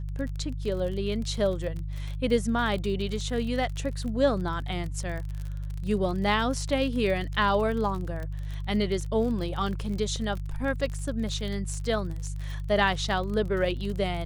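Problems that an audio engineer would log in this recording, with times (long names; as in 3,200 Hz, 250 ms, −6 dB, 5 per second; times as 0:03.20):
surface crackle 41 per second −33 dBFS
mains hum 50 Hz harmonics 3 −33 dBFS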